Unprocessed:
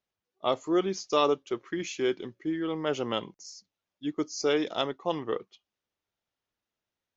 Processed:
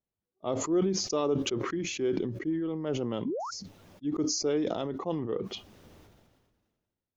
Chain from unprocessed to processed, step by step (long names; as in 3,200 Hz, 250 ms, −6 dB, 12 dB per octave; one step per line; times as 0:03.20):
sound drawn into the spectrogram rise, 0:03.25–0:03.51, 220–1,500 Hz −30 dBFS
tilt shelving filter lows +8.5 dB, about 630 Hz
level that may fall only so fast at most 36 dB per second
level −5.5 dB